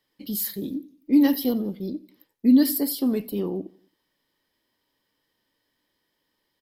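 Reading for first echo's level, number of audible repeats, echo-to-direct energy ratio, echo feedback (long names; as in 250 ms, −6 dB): −23.0 dB, 2, −22.0 dB, 49%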